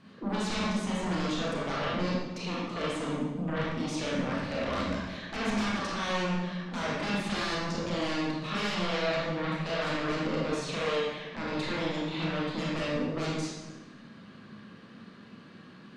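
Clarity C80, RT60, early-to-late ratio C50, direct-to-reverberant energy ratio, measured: 1.0 dB, 1.0 s, -2.0 dB, -6.0 dB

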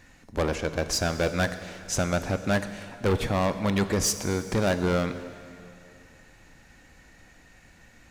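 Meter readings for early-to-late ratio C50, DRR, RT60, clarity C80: 11.0 dB, 10.0 dB, 2.5 s, 12.0 dB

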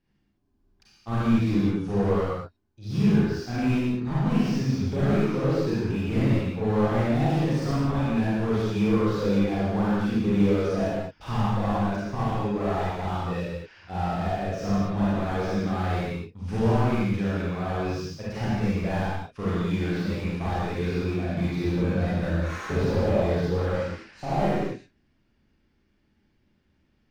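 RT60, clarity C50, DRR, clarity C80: not exponential, -5.0 dB, -9.5 dB, -1.5 dB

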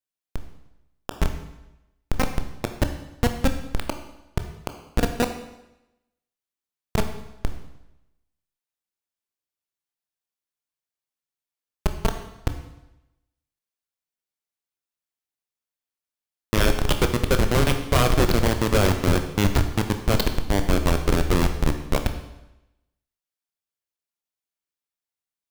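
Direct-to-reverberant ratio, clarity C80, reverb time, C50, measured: 6.5 dB, 11.0 dB, 0.95 s, 9.0 dB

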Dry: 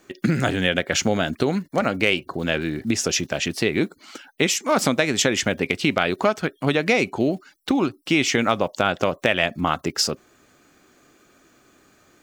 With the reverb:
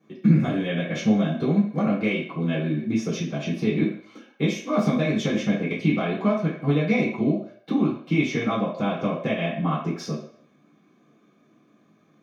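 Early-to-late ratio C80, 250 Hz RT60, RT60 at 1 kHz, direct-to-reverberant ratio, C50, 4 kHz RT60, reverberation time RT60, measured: 8.0 dB, 0.40 s, 0.60 s, -9.5 dB, 4.5 dB, 0.55 s, 0.60 s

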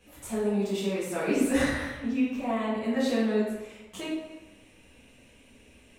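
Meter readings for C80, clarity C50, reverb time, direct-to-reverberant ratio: 3.0 dB, 0.0 dB, 1.1 s, -9.5 dB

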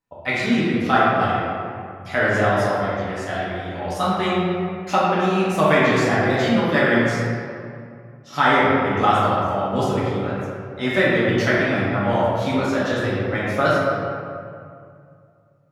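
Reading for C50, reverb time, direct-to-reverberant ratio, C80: -3.0 dB, 2.3 s, -9.0 dB, -0.5 dB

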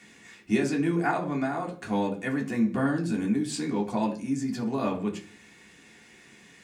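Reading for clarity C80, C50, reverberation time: 16.5 dB, 12.0 dB, 0.45 s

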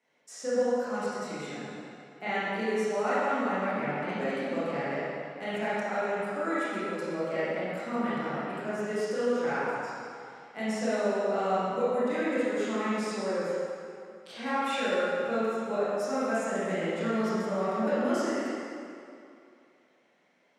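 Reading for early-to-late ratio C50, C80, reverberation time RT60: -5.5 dB, -3.0 dB, 2.6 s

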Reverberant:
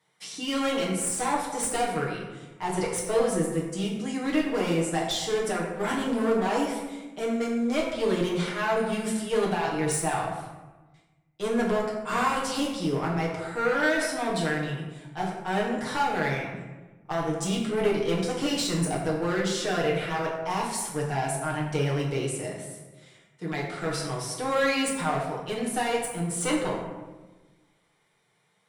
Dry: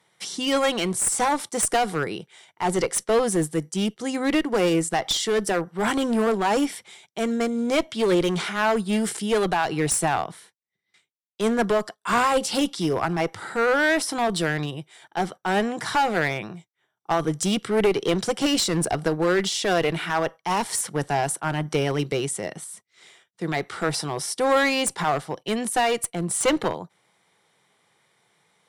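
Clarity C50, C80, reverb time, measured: 3.0 dB, 5.0 dB, 1.2 s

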